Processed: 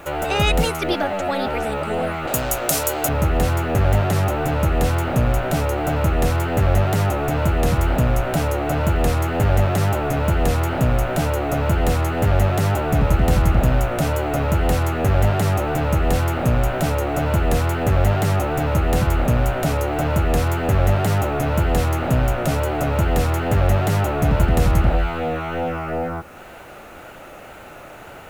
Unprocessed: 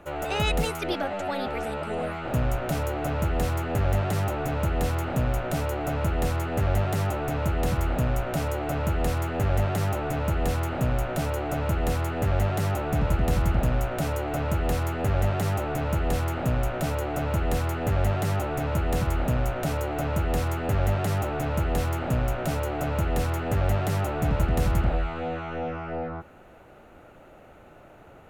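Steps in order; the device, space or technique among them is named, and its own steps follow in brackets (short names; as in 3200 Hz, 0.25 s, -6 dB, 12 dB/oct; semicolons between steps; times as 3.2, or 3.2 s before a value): 2.27–3.09 tone controls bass -11 dB, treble +15 dB; noise-reduction cassette on a plain deck (mismatched tape noise reduction encoder only; wow and flutter; white noise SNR 39 dB); gain +7 dB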